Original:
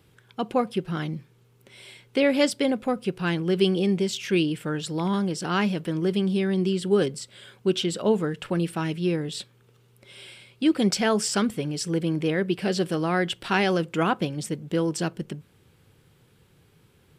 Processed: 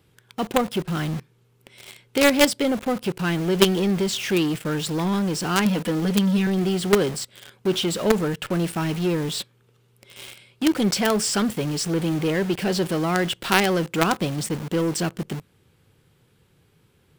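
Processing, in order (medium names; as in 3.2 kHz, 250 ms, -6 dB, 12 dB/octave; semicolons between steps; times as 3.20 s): 5.65–6.47 s: comb 4.1 ms, depth 99%; in parallel at -4 dB: companded quantiser 2-bit; on the sum: trim -1.5 dB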